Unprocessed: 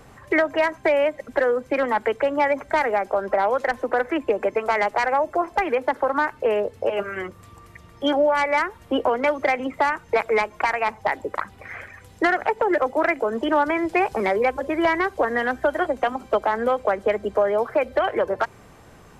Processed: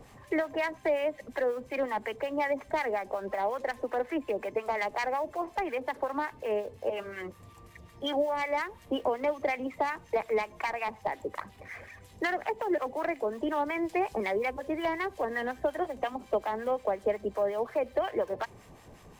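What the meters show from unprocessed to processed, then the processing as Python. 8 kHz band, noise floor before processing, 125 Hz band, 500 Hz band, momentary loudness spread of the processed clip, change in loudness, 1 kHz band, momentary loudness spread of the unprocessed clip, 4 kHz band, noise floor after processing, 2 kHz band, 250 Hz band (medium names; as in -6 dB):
no reading, -48 dBFS, -7.0 dB, -9.0 dB, 5 LU, -9.5 dB, -10.0 dB, 5 LU, -8.0 dB, -55 dBFS, -11.0 dB, -8.5 dB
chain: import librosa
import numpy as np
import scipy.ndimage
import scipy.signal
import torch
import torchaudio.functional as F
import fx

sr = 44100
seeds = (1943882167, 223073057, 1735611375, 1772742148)

y = fx.law_mismatch(x, sr, coded='mu')
y = fx.peak_eq(y, sr, hz=1400.0, db=-10.0, octaves=0.27)
y = fx.harmonic_tremolo(y, sr, hz=5.5, depth_pct=70, crossover_hz=970.0)
y = F.gain(torch.from_numpy(y), -6.0).numpy()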